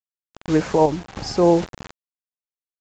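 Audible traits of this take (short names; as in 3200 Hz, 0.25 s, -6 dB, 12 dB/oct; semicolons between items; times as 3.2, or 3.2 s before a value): a quantiser's noise floor 6-bit, dither none; random-step tremolo; µ-law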